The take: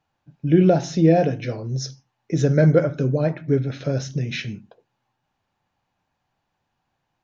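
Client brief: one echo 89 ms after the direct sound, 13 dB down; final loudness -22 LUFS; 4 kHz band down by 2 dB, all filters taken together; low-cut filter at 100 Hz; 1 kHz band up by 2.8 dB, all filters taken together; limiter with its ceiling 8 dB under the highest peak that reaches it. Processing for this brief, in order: high-pass 100 Hz; peaking EQ 1 kHz +5.5 dB; peaking EQ 4 kHz -3 dB; peak limiter -10.5 dBFS; delay 89 ms -13 dB; trim +0.5 dB

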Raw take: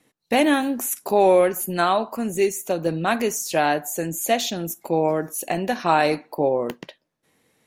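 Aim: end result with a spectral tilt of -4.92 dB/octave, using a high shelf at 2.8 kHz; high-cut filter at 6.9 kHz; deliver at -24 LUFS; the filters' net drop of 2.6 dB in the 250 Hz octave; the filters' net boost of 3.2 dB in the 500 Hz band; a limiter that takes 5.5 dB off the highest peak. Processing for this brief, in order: low-pass 6.9 kHz; peaking EQ 250 Hz -6 dB; peaking EQ 500 Hz +5.5 dB; treble shelf 2.8 kHz -5.5 dB; trim -1.5 dB; peak limiter -11.5 dBFS

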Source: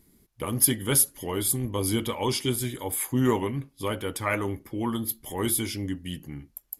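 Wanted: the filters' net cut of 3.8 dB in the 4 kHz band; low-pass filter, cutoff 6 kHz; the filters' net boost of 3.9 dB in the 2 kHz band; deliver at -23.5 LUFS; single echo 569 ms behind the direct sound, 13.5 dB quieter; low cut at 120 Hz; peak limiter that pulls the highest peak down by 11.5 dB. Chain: high-pass 120 Hz; low-pass 6 kHz; peaking EQ 2 kHz +6.5 dB; peaking EQ 4 kHz -7.5 dB; peak limiter -21.5 dBFS; delay 569 ms -13.5 dB; trim +9.5 dB

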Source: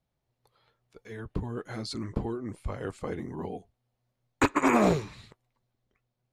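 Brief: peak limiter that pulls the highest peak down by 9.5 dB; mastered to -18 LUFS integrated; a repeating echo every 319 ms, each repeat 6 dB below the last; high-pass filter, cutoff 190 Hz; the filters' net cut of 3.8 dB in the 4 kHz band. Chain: high-pass 190 Hz; peaking EQ 4 kHz -4.5 dB; peak limiter -20 dBFS; feedback delay 319 ms, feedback 50%, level -6 dB; trim +17.5 dB

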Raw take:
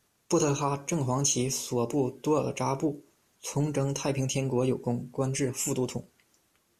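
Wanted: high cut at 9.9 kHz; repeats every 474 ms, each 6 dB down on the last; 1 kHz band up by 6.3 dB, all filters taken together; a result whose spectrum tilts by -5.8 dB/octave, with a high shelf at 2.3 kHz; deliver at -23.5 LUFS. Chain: low-pass 9.9 kHz; peaking EQ 1 kHz +8 dB; treble shelf 2.3 kHz -4.5 dB; feedback delay 474 ms, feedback 50%, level -6 dB; trim +4 dB

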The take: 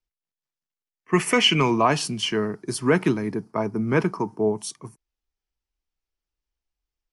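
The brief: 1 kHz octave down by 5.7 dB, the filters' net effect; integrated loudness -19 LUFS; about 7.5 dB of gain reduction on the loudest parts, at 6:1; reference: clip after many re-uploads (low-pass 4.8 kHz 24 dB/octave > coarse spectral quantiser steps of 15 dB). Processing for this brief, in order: peaking EQ 1 kHz -7 dB; compression 6:1, threshold -23 dBFS; low-pass 4.8 kHz 24 dB/octave; coarse spectral quantiser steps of 15 dB; trim +10.5 dB

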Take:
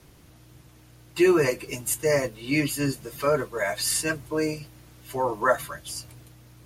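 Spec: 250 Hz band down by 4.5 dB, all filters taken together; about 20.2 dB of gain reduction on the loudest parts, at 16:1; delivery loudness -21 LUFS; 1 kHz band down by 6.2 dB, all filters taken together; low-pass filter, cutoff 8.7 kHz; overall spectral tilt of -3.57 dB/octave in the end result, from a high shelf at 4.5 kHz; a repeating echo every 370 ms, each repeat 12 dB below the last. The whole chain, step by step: low-pass 8.7 kHz; peaking EQ 250 Hz -6.5 dB; peaking EQ 1 kHz -7.5 dB; treble shelf 4.5 kHz -5 dB; compression 16:1, threshold -39 dBFS; feedback delay 370 ms, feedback 25%, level -12 dB; trim +22.5 dB

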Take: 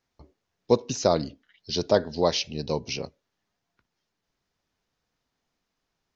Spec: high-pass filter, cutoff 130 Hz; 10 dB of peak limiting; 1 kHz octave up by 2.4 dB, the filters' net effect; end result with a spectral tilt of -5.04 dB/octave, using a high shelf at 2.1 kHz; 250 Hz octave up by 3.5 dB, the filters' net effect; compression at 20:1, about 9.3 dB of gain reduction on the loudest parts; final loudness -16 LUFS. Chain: high-pass 130 Hz; peaking EQ 250 Hz +5 dB; peaking EQ 1 kHz +4.5 dB; treble shelf 2.1 kHz -8.5 dB; compression 20:1, threshold -22 dBFS; trim +18.5 dB; peak limiter -1.5 dBFS

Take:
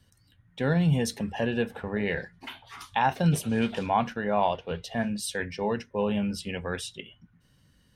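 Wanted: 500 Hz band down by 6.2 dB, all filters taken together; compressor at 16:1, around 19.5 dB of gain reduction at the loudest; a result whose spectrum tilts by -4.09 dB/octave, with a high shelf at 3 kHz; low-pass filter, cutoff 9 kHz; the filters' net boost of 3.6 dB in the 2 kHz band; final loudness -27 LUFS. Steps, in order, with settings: low-pass 9 kHz; peaking EQ 500 Hz -8 dB; peaking EQ 2 kHz +4 dB; treble shelf 3 kHz +3 dB; compression 16:1, threshold -39 dBFS; trim +16.5 dB

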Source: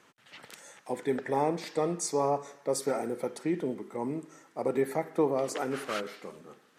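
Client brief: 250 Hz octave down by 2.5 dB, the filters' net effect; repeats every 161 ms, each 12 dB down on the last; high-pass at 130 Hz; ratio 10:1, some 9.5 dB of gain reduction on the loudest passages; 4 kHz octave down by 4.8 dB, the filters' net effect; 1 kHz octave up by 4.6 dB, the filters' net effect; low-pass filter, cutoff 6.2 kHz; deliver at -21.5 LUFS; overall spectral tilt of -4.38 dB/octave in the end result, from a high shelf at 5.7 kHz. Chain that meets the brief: high-pass 130 Hz; low-pass 6.2 kHz; peaking EQ 250 Hz -3.5 dB; peaking EQ 1 kHz +6.5 dB; peaking EQ 4 kHz -8.5 dB; treble shelf 5.7 kHz +6 dB; compression 10:1, threshold -30 dBFS; feedback delay 161 ms, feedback 25%, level -12 dB; trim +15 dB

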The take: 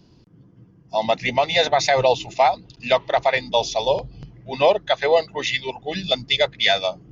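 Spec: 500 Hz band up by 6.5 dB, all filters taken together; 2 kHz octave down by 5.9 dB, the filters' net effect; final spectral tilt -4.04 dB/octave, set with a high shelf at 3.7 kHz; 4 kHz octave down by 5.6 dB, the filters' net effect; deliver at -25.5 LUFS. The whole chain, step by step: peaking EQ 500 Hz +8.5 dB; peaking EQ 2 kHz -6.5 dB; treble shelf 3.7 kHz +4 dB; peaking EQ 4 kHz -7 dB; trim -9 dB

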